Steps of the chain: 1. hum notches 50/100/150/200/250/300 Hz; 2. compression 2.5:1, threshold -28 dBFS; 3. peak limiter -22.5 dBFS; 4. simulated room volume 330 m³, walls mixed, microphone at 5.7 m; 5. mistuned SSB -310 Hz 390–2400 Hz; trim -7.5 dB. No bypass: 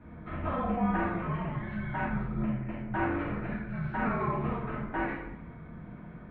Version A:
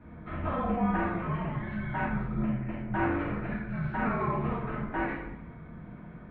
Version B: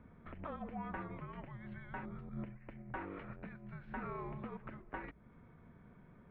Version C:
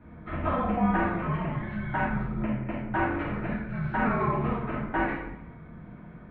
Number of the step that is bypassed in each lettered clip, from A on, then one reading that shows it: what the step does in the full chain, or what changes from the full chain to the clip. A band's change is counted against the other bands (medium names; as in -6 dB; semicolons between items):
2, mean gain reduction 6.0 dB; 4, crest factor change +2.5 dB; 3, mean gain reduction 2.0 dB